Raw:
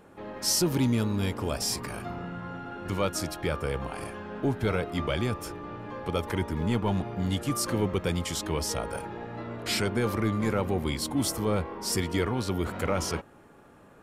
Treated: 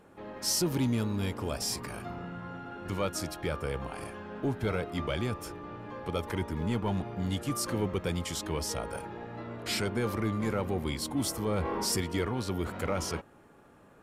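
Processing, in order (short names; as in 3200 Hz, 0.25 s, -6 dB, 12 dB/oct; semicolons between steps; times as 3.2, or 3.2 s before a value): in parallel at -5.5 dB: one-sided clip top -21 dBFS; 11.57–12.01 on the sum: fast leveller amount 70%; gain -7 dB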